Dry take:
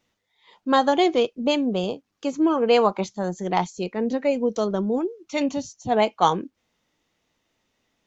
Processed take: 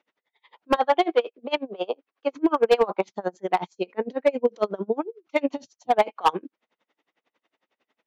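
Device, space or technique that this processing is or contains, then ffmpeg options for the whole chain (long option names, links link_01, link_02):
helicopter radio: -filter_complex "[0:a]highpass=370,lowpass=2700,aeval=exprs='val(0)*pow(10,-30*(0.5-0.5*cos(2*PI*11*n/s))/20)':channel_layout=same,asoftclip=type=hard:threshold=-18dB,asettb=1/sr,asplit=3[link_01][link_02][link_03];[link_01]atrim=end=0.764[link_04];[link_02]atrim=start=0.76:end=2.35,asetpts=PTS-STARTPTS,afade=type=in:duration=0.004:curve=qsin,afade=type=out:start_time=1.586:duration=0.004:curve=qsin,acrossover=split=290 5400:gain=0.178 1 0.178[link_05][link_06][link_07];[link_05][link_06][link_07]amix=inputs=3:normalize=0[link_08];[link_03]atrim=start=2.346[link_09];[link_04][link_08]acrossfade=duration=0.004:curve1=hsin:curve2=qsin[link_10];[link_10][link_09]acrossfade=duration=0.004:curve1=qsin:curve2=hsin,volume=7.5dB"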